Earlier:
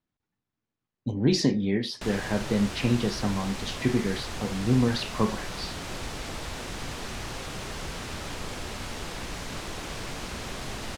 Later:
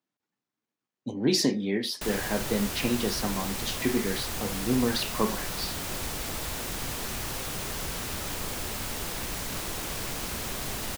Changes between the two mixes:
speech: add high-pass 220 Hz 12 dB/octave; master: remove distance through air 66 m

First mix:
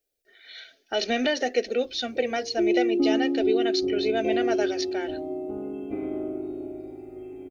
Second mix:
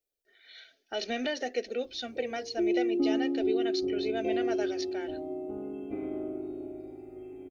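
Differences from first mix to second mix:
speech -7.5 dB; background -4.5 dB

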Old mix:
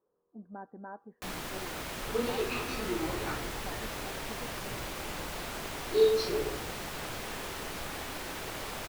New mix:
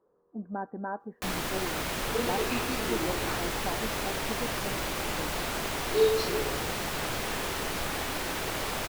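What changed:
speech +9.5 dB; first sound +6.5 dB

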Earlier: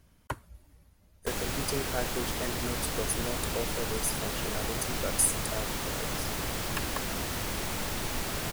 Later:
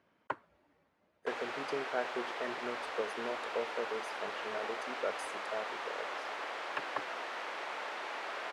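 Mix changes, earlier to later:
background: add high-pass 570 Hz 12 dB/octave; master: add band-pass 360–2200 Hz

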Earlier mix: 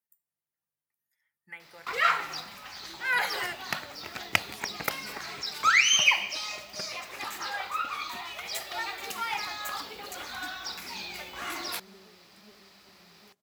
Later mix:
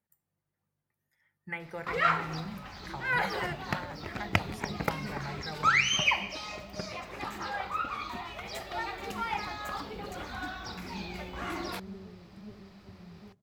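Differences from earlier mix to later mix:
speech +9.5 dB; second sound: add peaking EQ 96 Hz +15 dB 1.2 oct; master: add tilt EQ -3.5 dB/octave

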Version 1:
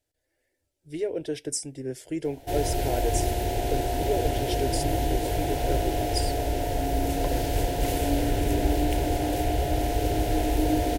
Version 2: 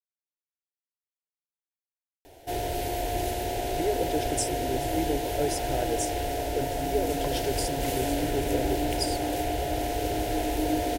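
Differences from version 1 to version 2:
speech: entry +2.85 s; background: add bass shelf 220 Hz -8 dB

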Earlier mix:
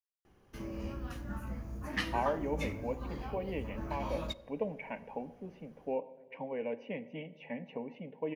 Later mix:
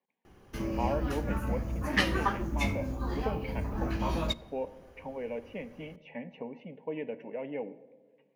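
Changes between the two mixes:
speech: entry -1.35 s; background +8.0 dB

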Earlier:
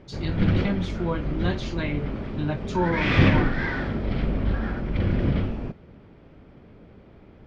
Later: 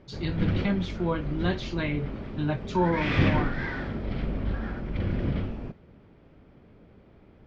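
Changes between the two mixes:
speech: add low-pass 5.9 kHz 12 dB/octave; background -5.0 dB

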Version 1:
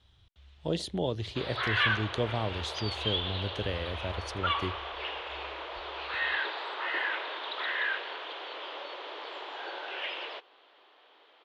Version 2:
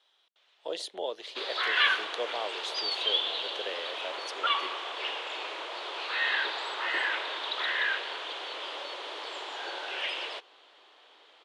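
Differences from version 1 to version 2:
speech: add high-pass 460 Hz 24 dB/octave; background: remove distance through air 210 m

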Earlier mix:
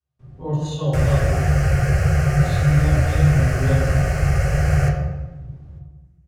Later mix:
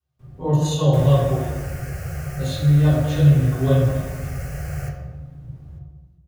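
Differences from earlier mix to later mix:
speech +4.5 dB; second sound -12.0 dB; master: remove distance through air 56 m

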